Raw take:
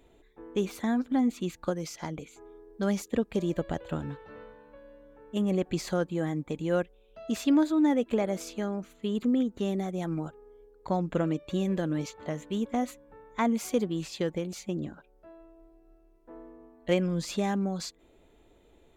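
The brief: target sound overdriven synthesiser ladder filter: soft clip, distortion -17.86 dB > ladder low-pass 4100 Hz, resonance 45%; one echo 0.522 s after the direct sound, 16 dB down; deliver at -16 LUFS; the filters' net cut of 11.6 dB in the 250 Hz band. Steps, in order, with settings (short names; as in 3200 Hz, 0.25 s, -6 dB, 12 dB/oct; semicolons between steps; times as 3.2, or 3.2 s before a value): bell 250 Hz -3.5 dB; echo 0.522 s -16 dB; soft clip -21 dBFS; ladder low-pass 4100 Hz, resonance 45%; gain +26.5 dB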